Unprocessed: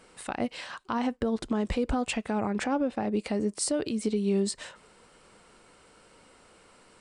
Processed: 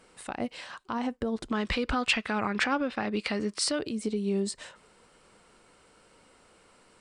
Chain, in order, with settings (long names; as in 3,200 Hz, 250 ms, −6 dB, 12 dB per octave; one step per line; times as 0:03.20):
0:01.52–0:03.79: flat-topped bell 2,400 Hz +11 dB 2.6 octaves
level −2.5 dB